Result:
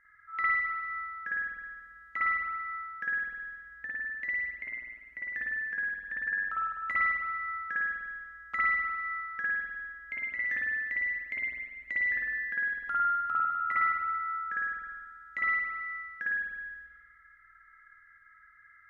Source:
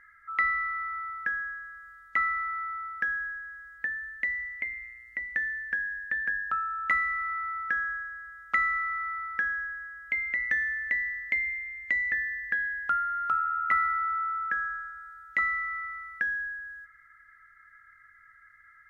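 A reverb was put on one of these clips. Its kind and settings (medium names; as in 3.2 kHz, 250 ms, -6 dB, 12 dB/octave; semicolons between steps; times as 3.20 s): spring tank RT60 1.5 s, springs 50 ms, chirp 25 ms, DRR -6.5 dB; trim -9.5 dB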